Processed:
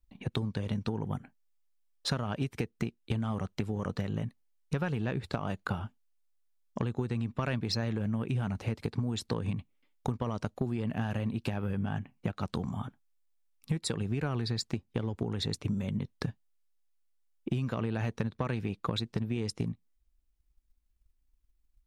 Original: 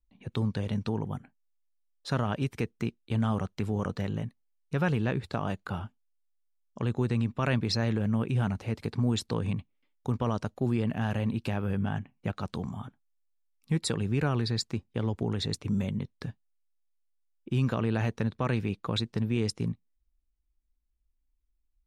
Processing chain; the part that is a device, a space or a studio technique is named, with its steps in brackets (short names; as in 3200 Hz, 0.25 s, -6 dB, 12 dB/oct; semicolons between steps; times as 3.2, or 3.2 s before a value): drum-bus smash (transient shaper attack +7 dB, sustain 0 dB; compressor, threshold -30 dBFS, peak gain reduction 12.5 dB; soft clip -21.5 dBFS, distortion -22 dB); gain +2.5 dB